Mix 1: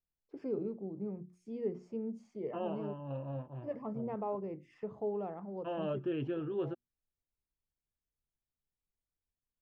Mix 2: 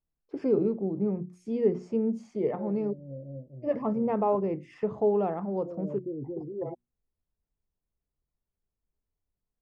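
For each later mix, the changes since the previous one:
first voice +11.5 dB
second voice: add elliptic low-pass filter 550 Hz, stop band 50 dB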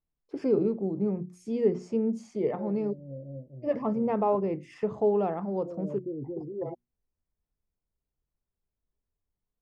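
master: add high-shelf EQ 4,500 Hz +10 dB

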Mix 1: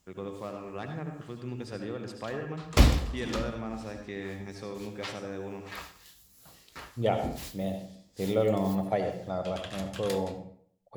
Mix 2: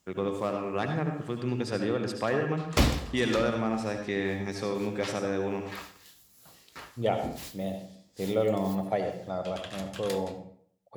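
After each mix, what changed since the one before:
first voice +8.5 dB
master: add high-pass filter 110 Hz 6 dB per octave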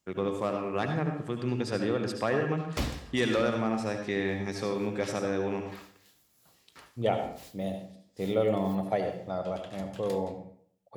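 background −8.5 dB

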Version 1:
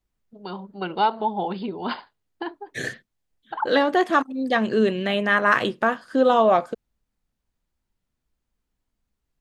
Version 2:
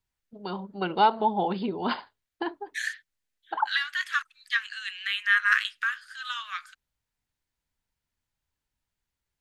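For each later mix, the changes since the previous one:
second voice: add Butterworth high-pass 1,400 Hz 48 dB per octave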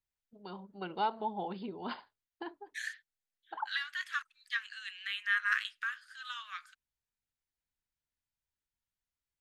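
first voice −11.5 dB
second voice −8.5 dB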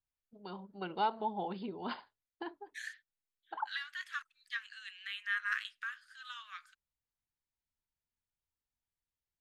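second voice −4.5 dB

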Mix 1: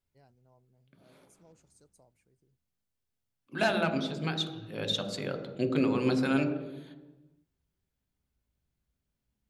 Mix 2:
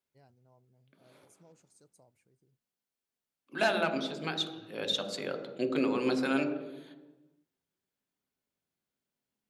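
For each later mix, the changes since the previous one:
second voice: add high-pass filter 260 Hz 12 dB per octave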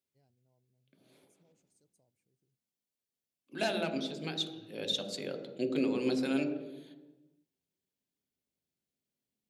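first voice −8.5 dB
master: add parametric band 1,200 Hz −11.5 dB 1.4 octaves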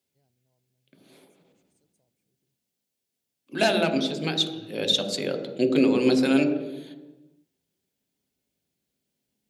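second voice +10.5 dB

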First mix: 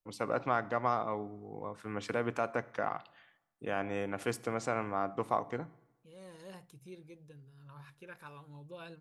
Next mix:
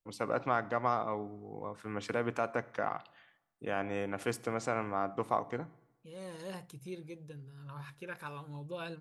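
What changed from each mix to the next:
second voice +6.5 dB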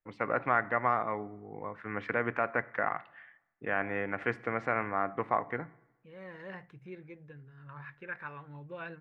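second voice −3.0 dB
master: add low-pass with resonance 1,900 Hz, resonance Q 3.5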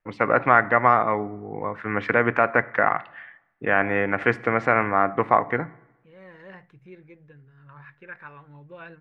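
first voice +11.0 dB

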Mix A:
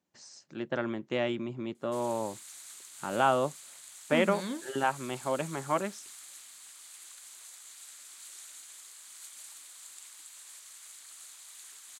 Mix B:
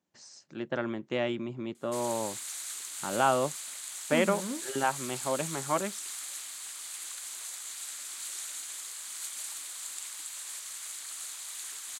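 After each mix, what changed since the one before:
second voice: add low-pass filter 1,400 Hz
background +9.0 dB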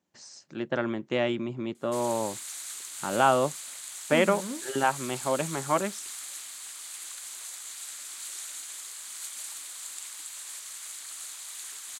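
first voice +3.5 dB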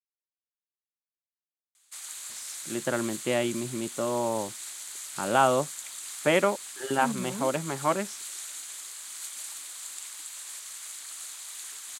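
first voice: entry +2.15 s
second voice: entry +2.90 s

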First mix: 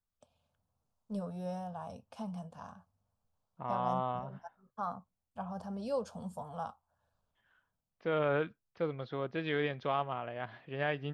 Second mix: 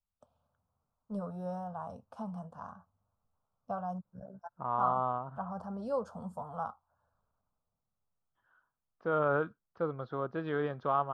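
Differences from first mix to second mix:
second voice: entry +1.00 s
master: add high shelf with overshoot 1,700 Hz −8 dB, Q 3

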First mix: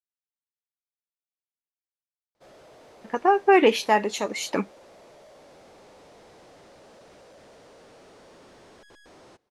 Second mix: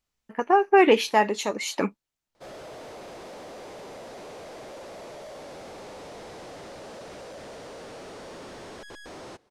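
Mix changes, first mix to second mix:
speech: entry −2.75 s
background +9.5 dB

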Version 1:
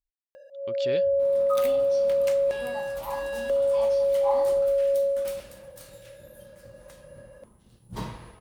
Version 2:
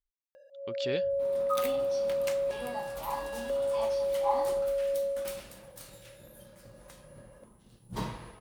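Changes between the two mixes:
first sound −7.0 dB
master: add parametric band 75 Hz −7 dB 0.77 octaves

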